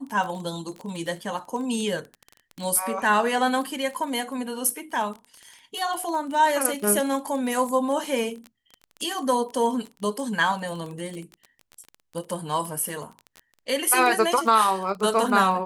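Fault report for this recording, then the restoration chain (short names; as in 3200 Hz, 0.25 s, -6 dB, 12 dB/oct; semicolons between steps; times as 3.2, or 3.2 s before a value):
crackle 22/s -30 dBFS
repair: de-click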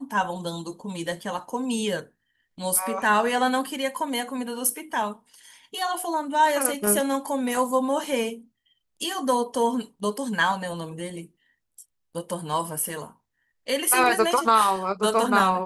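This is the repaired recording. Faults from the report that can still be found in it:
none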